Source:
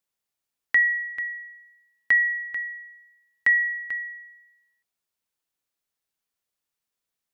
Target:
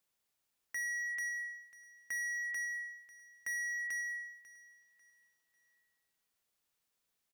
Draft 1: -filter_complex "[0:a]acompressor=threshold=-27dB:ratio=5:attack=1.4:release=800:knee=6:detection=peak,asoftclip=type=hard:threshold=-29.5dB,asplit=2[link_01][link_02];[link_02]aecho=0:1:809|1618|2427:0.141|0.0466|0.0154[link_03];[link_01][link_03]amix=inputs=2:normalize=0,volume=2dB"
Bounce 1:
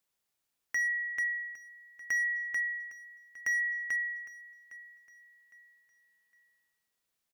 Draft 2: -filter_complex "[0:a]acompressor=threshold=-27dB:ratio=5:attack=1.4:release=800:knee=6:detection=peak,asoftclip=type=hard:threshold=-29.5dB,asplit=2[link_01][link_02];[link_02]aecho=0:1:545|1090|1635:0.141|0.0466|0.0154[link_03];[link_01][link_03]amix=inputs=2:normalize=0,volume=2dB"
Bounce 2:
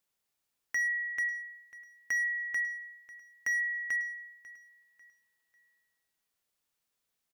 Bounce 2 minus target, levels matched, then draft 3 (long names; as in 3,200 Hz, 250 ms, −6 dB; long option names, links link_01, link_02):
hard clipping: distortion −8 dB
-filter_complex "[0:a]acompressor=threshold=-27dB:ratio=5:attack=1.4:release=800:knee=6:detection=peak,asoftclip=type=hard:threshold=-38.5dB,asplit=2[link_01][link_02];[link_02]aecho=0:1:545|1090|1635:0.141|0.0466|0.0154[link_03];[link_01][link_03]amix=inputs=2:normalize=0,volume=2dB"